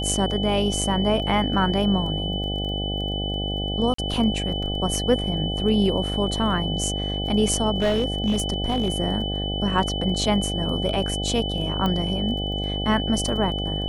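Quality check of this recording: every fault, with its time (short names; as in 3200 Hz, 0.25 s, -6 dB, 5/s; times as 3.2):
buzz 50 Hz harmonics 16 -28 dBFS
crackle 10/s -32 dBFS
tone 3000 Hz -29 dBFS
3.94–3.98 gap 44 ms
7.8–8.9 clipped -16.5 dBFS
11.86 pop -13 dBFS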